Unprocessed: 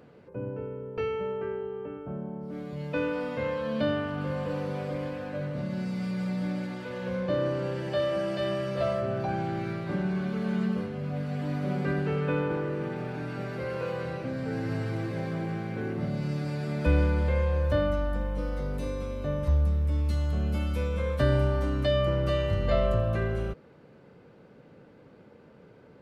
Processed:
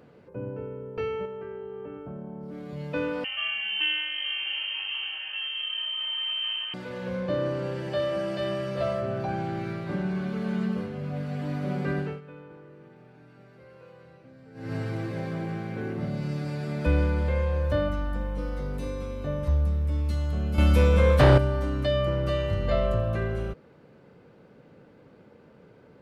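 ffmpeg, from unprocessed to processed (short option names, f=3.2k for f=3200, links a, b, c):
-filter_complex "[0:a]asettb=1/sr,asplit=3[a][b][c];[a]atrim=end=1.254[d];[b]atrim=start=1.25:end=2.69,asetpts=PTS-STARTPTS,afade=t=in:d=0.004:c=qsin,afade=t=out:st=1.436:d=0.004:c=qsin,acompressor=threshold=-34dB:ratio=6:attack=3.2:release=140:knee=1:detection=peak[e];[c]atrim=start=2.686[f];[d][e]acrossfade=d=0.004:c1=hsin:c2=qsin[g];[g][f]acrossfade=d=0.004:c1=qsin:c2=hsin,asettb=1/sr,asplit=3[h][i][j];[h]atrim=end=3.244[k];[i]atrim=start=3.24:end=6.74,asetpts=PTS-STARTPTS,afade=t=in:d=0.004:c=qsin,afade=t=out:st=3.496:d=0.004:c=qsin,lowpass=f=2.8k:t=q:w=0.5098,lowpass=f=2.8k:t=q:w=0.6013,lowpass=f=2.8k:t=q:w=0.9,lowpass=f=2.8k:t=q:w=2.563,afreqshift=-3300[l];[j]atrim=start=6.736[m];[k][l]acrossfade=d=0.004:c1=hsin:c2=qsin[n];[n][m]acrossfade=d=0.004:c1=qsin:c2=hsin,asettb=1/sr,asplit=3[o][p][q];[o]atrim=end=17.884[r];[p]atrim=start=17.88:end=19.27,asetpts=PTS-STARTPTS,afade=t=in:d=0.004:c=qsin,afade=t=out:st=1.386:d=0.004:c=qsin,bandreject=f=600:w=12[s];[q]atrim=start=19.266[t];[r][s]acrossfade=d=0.004:c1=hsin:c2=qsin[u];[u][t]acrossfade=d=0.004:c1=qsin:c2=hsin,asettb=1/sr,asplit=3[v][w][x];[v]atrim=end=20.584[y];[w]atrim=start=20.58:end=21.38,asetpts=PTS-STARTPTS,afade=t=in:d=0.004:c=qsin,afade=t=out:st=0.796:d=0.004:c=qsin,aeval=exprs='0.266*sin(PI/2*2.24*val(0)/0.266)':c=same[z];[x]atrim=start=21.376[aa];[y][z]acrossfade=d=0.004:c1=hsin:c2=qsin[ab];[ab][aa]acrossfade=d=0.004:c1=qsin:c2=hsin,asplit=3[ac][ad][ae];[ac]atrim=end=12.21,asetpts=PTS-STARTPTS,afade=t=out:st=11.99:d=0.22:silence=0.125893[af];[ad]atrim=start=12.21:end=14.54,asetpts=PTS-STARTPTS,volume=-18dB[ag];[ae]atrim=start=14.54,asetpts=PTS-STARTPTS,afade=t=in:d=0.22:silence=0.125893[ah];[af][ag][ah]concat=n=3:v=0:a=1"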